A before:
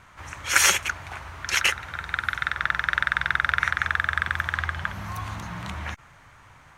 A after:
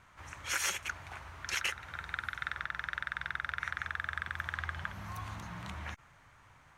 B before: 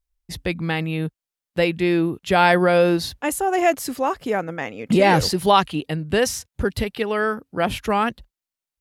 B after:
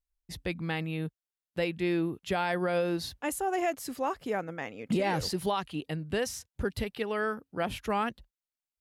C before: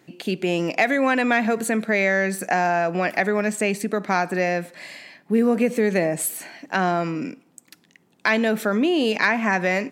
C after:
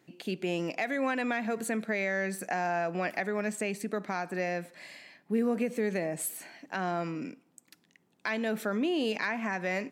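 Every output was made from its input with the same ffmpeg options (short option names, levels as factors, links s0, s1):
-af "alimiter=limit=0.299:level=0:latency=1:release=255,volume=0.355"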